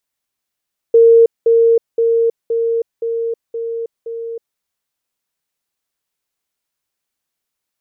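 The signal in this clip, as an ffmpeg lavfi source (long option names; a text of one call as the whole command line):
ffmpeg -f lavfi -i "aevalsrc='pow(10,(-4.5-3*floor(t/0.52))/20)*sin(2*PI*460*t)*clip(min(mod(t,0.52),0.32-mod(t,0.52))/0.005,0,1)':duration=3.64:sample_rate=44100" out.wav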